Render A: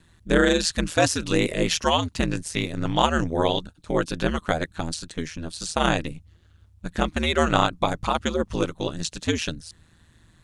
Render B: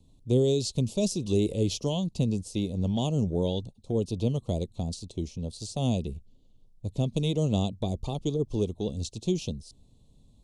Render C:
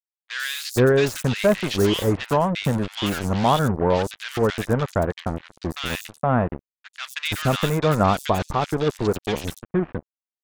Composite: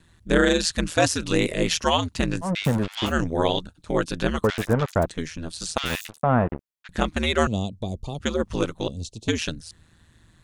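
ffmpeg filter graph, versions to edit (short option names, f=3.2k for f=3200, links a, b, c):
-filter_complex "[2:a]asplit=3[a][b][c];[1:a]asplit=2[d][e];[0:a]asplit=6[f][g][h][i][j][k];[f]atrim=end=2.51[l];[a]atrim=start=2.41:end=3.13[m];[g]atrim=start=3.03:end=4.442[n];[b]atrim=start=4.438:end=5.062[o];[h]atrim=start=5.058:end=5.782[p];[c]atrim=start=5.778:end=6.892[q];[i]atrim=start=6.888:end=7.472[r];[d]atrim=start=7.468:end=8.202[s];[j]atrim=start=8.198:end=8.882[t];[e]atrim=start=8.878:end=9.282[u];[k]atrim=start=9.278[v];[l][m]acrossfade=d=0.1:c1=tri:c2=tri[w];[w][n]acrossfade=d=0.1:c1=tri:c2=tri[x];[x][o]acrossfade=d=0.004:c1=hsin:c2=hsin[y];[y][p]acrossfade=d=0.004:c1=hsin:c2=hsin[z];[z][q]acrossfade=d=0.004:c1=hsin:c2=hsin[aa];[aa][r]acrossfade=d=0.004:c1=hsin:c2=hsin[ab];[ab][s]acrossfade=d=0.004:c1=hsin:c2=hsin[ac];[ac][t]acrossfade=d=0.004:c1=hsin:c2=hsin[ad];[ad][u]acrossfade=d=0.004:c1=hsin:c2=hsin[ae];[ae][v]acrossfade=d=0.004:c1=hsin:c2=hsin"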